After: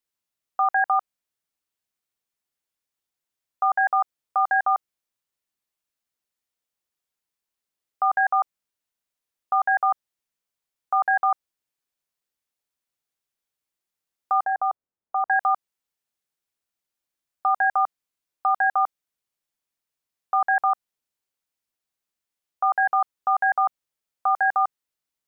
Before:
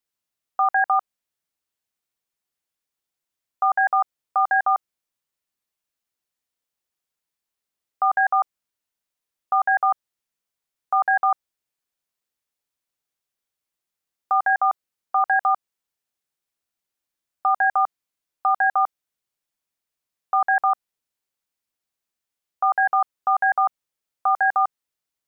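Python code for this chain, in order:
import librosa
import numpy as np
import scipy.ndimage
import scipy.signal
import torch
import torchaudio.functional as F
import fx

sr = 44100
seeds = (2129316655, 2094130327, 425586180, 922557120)

y = fx.lowpass(x, sr, hz=1000.0, slope=12, at=(14.44, 15.3))
y = F.gain(torch.from_numpy(y), -1.5).numpy()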